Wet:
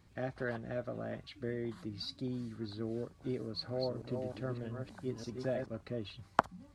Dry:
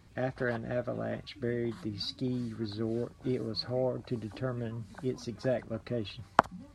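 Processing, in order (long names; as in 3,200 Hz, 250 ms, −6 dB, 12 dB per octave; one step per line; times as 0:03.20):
0:03.41–0:05.66: delay that plays each chunk backwards 305 ms, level −5 dB
level −5.5 dB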